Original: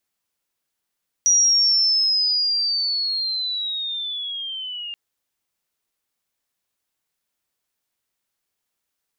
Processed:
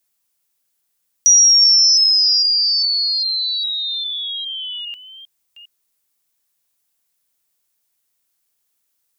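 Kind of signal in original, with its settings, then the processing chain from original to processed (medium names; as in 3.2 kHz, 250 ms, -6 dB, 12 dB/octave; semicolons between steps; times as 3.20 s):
sweep linear 5.8 kHz -> 2.8 kHz -12.5 dBFS -> -29 dBFS 3.68 s
chunks repeated in reverse 404 ms, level -11.5 dB; treble shelf 5.4 kHz +11.5 dB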